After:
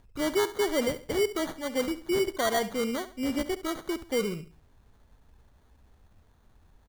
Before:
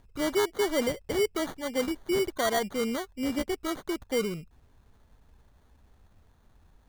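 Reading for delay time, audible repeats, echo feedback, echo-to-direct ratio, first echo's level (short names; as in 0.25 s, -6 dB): 69 ms, 3, 33%, -14.0 dB, -14.5 dB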